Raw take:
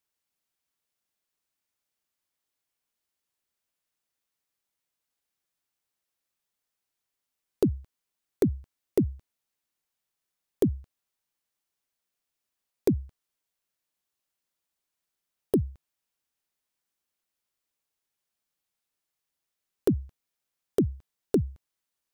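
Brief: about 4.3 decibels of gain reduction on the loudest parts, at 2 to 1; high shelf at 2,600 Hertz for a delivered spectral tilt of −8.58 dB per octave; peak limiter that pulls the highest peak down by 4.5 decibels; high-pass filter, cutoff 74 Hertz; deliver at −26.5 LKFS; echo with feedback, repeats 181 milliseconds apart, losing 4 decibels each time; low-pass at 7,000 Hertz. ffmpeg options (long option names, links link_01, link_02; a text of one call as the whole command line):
ffmpeg -i in.wav -af "highpass=74,lowpass=7000,highshelf=frequency=2600:gain=-7,acompressor=threshold=-26dB:ratio=2,alimiter=limit=-18dB:level=0:latency=1,aecho=1:1:181|362|543|724|905|1086|1267|1448|1629:0.631|0.398|0.25|0.158|0.0994|0.0626|0.0394|0.0249|0.0157,volume=10dB" out.wav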